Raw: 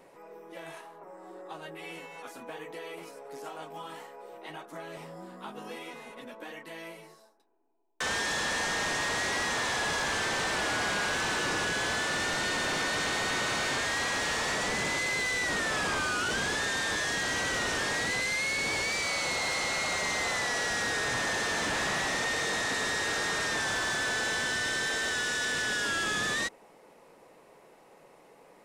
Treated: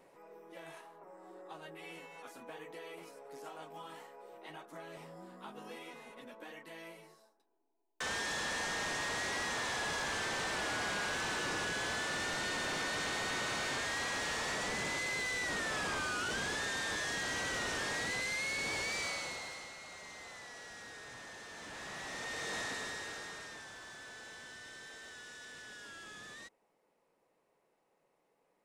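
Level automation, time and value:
0:19.05 −6.5 dB
0:19.76 −19.5 dB
0:21.48 −19.5 dB
0:22.59 −8 dB
0:23.71 −20 dB

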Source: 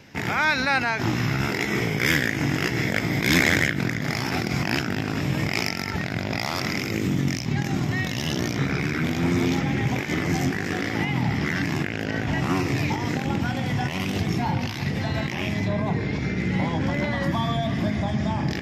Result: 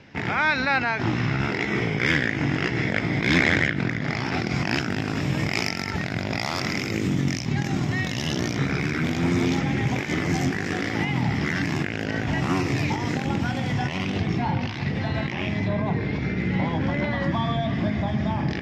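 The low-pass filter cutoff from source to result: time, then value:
0:04.19 4,000 Hz
0:05.00 9,500 Hz
0:13.62 9,500 Hz
0:14.18 4,000 Hz

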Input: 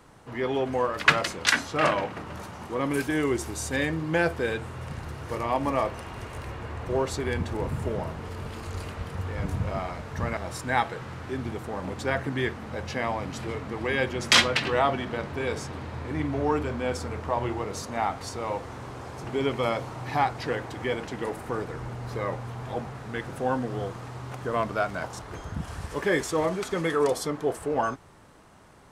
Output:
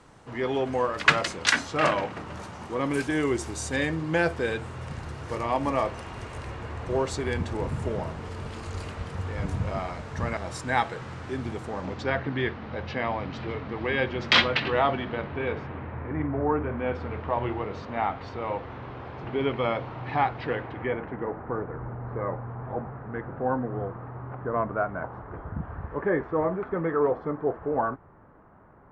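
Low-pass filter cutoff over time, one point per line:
low-pass filter 24 dB per octave
0:11.65 9,300 Hz
0:12.18 4,200 Hz
0:14.91 4,200 Hz
0:16.48 1,700 Hz
0:17.10 3,400 Hz
0:20.52 3,400 Hz
0:21.25 1,600 Hz

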